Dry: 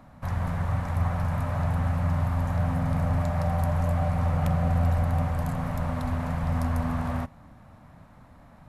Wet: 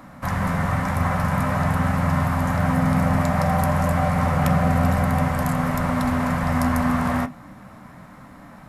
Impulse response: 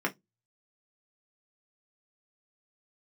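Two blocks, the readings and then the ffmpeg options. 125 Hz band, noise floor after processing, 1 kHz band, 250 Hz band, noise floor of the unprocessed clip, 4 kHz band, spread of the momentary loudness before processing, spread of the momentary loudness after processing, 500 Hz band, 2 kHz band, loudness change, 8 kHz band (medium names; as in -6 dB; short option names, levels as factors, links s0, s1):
+3.0 dB, -44 dBFS, +9.5 dB, +9.5 dB, -52 dBFS, +10.0 dB, 5 LU, 3 LU, +7.5 dB, +12.0 dB, +5.5 dB, +12.5 dB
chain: -filter_complex "[0:a]highshelf=f=2200:g=12,asplit=2[s0][s1];[1:a]atrim=start_sample=2205,lowpass=5200,lowshelf=f=120:g=10.5[s2];[s1][s2]afir=irnorm=-1:irlink=0,volume=0.473[s3];[s0][s3]amix=inputs=2:normalize=0,volume=1.19"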